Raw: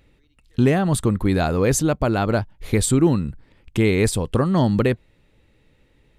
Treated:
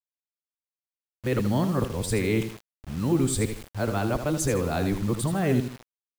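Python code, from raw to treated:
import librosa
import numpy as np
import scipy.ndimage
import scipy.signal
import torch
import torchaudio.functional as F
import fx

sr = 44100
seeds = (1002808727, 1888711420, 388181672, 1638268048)

y = np.flip(x).copy()
y = fx.echo_feedback(y, sr, ms=79, feedback_pct=32, wet_db=-9)
y = fx.quant_dither(y, sr, seeds[0], bits=6, dither='none')
y = y * 10.0 ** (-7.0 / 20.0)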